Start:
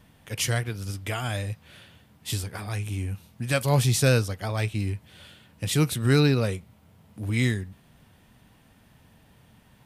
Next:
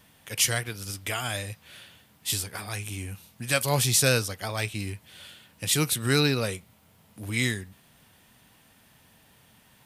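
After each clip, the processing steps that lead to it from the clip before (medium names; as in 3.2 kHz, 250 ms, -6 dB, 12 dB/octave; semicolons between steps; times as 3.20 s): tilt EQ +2 dB/octave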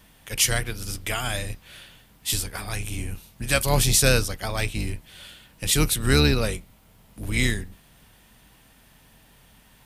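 octave divider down 2 oct, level +1 dB; trim +2.5 dB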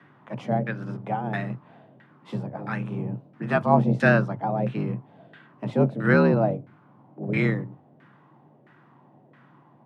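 LFO low-pass saw down 1.5 Hz 470–1600 Hz; frequency shift +100 Hz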